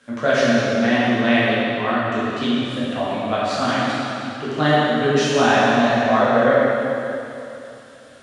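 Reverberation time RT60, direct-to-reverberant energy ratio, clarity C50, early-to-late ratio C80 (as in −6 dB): 2.9 s, −10.0 dB, −4.0 dB, −2.5 dB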